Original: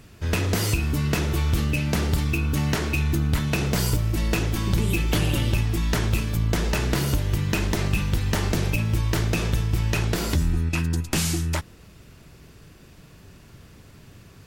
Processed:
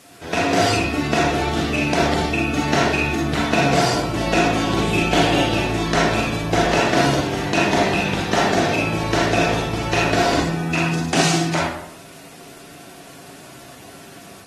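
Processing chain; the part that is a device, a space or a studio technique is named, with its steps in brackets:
filmed off a television (band-pass filter 240–6,500 Hz; parametric band 720 Hz +10 dB 0.25 octaves; convolution reverb RT60 0.70 s, pre-delay 34 ms, DRR −3.5 dB; white noise bed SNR 25 dB; automatic gain control gain up to 4 dB; AAC 32 kbit/s 44,100 Hz)

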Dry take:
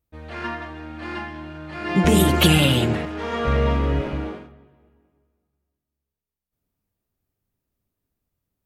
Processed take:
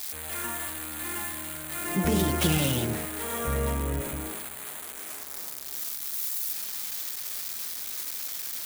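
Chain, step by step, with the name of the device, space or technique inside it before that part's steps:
budget class-D amplifier (gap after every zero crossing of 0.093 ms; spike at every zero crossing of −10 dBFS)
parametric band 2,800 Hz −4 dB 0.34 octaves
level −8.5 dB

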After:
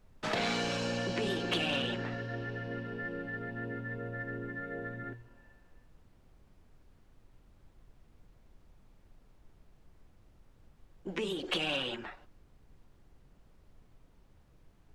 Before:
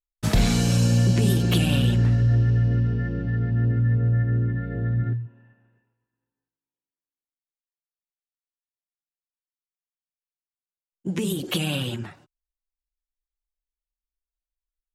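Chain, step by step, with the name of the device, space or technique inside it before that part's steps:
aircraft cabin announcement (band-pass filter 460–3,300 Hz; soft clipping −22.5 dBFS, distortion −20 dB; brown noise bed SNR 18 dB)

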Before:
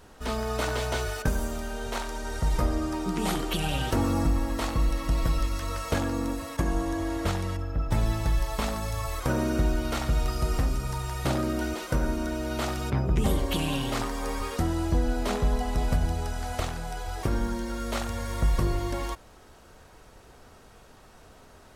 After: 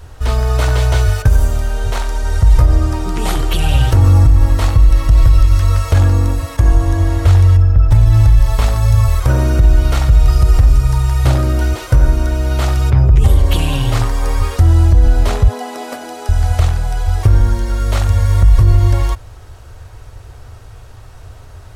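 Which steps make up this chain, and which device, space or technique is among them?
0:15.48–0:16.29: elliptic high-pass filter 240 Hz, stop band 50 dB
car stereo with a boomy subwoofer (low shelf with overshoot 140 Hz +10 dB, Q 3; brickwall limiter −10 dBFS, peak gain reduction 8 dB)
level +8.5 dB

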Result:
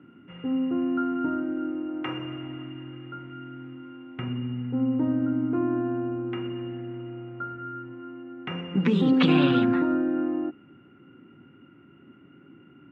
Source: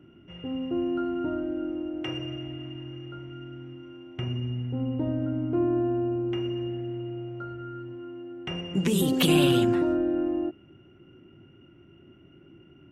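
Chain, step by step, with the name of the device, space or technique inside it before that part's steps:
0:01.89–0:02.64: parametric band 1,000 Hz +5 dB 0.74 octaves
kitchen radio (loudspeaker in its box 180–3,400 Hz, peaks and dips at 260 Hz +4 dB, 360 Hz −8 dB, 640 Hz −9 dB, 1,300 Hz +4 dB, 3,000 Hz −9 dB)
level +4.5 dB

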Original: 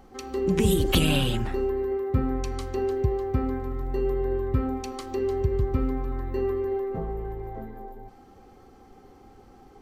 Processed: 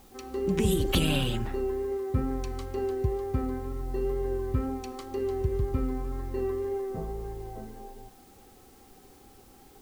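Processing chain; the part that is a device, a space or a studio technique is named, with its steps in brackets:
plain cassette with noise reduction switched in (one half of a high-frequency compander decoder only; tape wow and flutter 21 cents; white noise bed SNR 30 dB)
level −3.5 dB

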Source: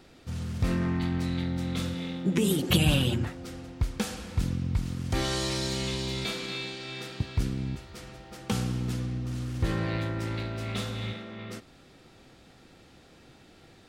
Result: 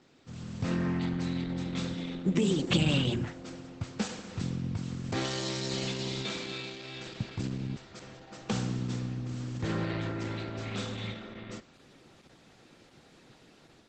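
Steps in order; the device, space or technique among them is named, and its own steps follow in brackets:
video call (high-pass filter 110 Hz 24 dB per octave; automatic gain control gain up to 5 dB; level −6 dB; Opus 12 kbit/s 48,000 Hz)

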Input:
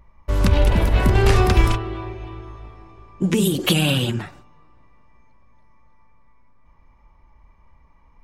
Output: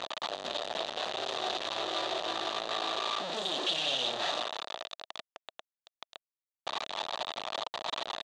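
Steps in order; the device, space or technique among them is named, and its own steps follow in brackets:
home computer beeper (sign of each sample alone; loudspeaker in its box 640–5,600 Hz, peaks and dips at 650 Hz +7 dB, 1,000 Hz −4 dB, 1,500 Hz −6 dB, 2,200 Hz −10 dB, 3,700 Hz +9 dB, 5,300 Hz −7 dB)
level −6.5 dB

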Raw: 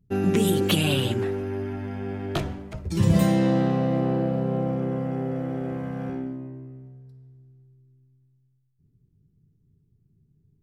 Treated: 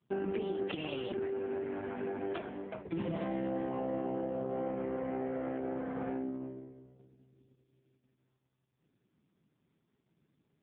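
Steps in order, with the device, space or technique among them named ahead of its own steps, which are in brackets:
0:04.53–0:05.58: dynamic equaliser 2,100 Hz, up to +6 dB, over −54 dBFS, Q 1.2
voicemail (band-pass filter 320–2,800 Hz; downward compressor 6 to 1, threshold −35 dBFS, peak gain reduction 13 dB; level +3 dB; AMR narrowband 4.75 kbit/s 8,000 Hz)

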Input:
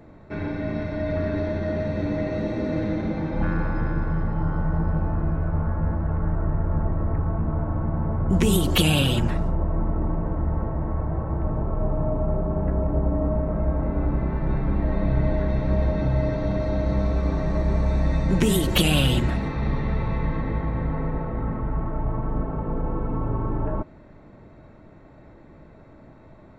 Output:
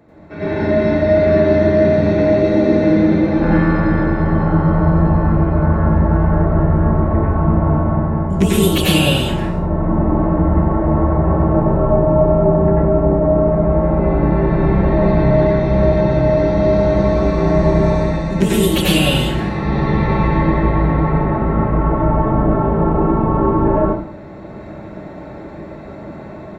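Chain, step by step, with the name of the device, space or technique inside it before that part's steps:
far laptop microphone (convolution reverb RT60 0.55 s, pre-delay 86 ms, DRR −5.5 dB; high-pass filter 120 Hz 6 dB per octave; automatic gain control)
level −1 dB

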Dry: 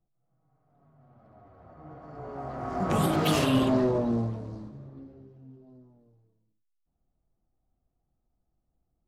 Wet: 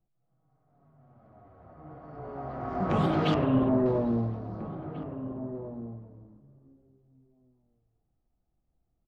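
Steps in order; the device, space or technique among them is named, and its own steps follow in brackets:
0:03.34–0:03.86: Bessel low-pass filter 1,200 Hz, order 2
shout across a valley (high-frequency loss of the air 200 metres; slap from a distant wall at 290 metres, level −12 dB)

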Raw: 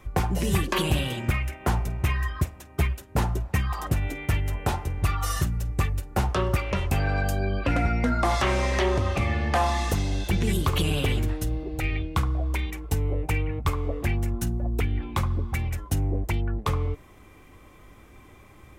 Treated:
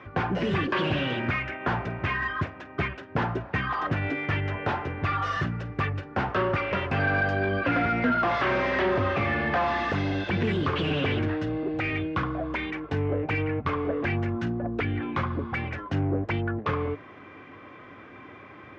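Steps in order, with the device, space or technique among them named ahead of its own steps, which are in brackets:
overdrive pedal into a guitar cabinet (mid-hump overdrive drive 23 dB, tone 1,400 Hz, clips at −11 dBFS; loudspeaker in its box 100–4,400 Hz, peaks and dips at 100 Hz +8 dB, 150 Hz +4 dB, 270 Hz +5 dB, 840 Hz −4 dB, 1,600 Hz +5 dB, 4,000 Hz −4 dB)
level −5 dB

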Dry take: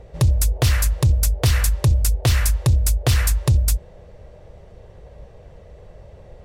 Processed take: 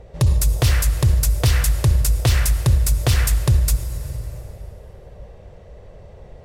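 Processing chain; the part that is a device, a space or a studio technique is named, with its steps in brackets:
compressed reverb return (on a send at −4.5 dB: convolution reverb RT60 2.8 s, pre-delay 52 ms + downward compressor, threshold −18 dBFS, peak gain reduction 7.5 dB)

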